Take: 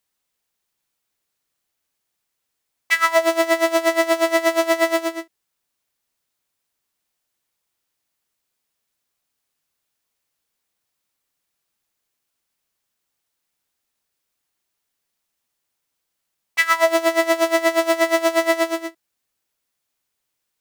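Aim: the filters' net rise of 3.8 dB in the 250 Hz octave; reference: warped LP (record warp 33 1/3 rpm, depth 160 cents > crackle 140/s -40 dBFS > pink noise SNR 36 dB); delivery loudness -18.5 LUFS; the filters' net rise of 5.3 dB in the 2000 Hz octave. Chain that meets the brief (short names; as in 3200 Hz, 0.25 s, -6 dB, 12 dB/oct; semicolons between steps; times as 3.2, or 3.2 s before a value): bell 250 Hz +6 dB; bell 2000 Hz +5.5 dB; record warp 33 1/3 rpm, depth 160 cents; crackle 140/s -40 dBFS; pink noise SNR 36 dB; gain -2.5 dB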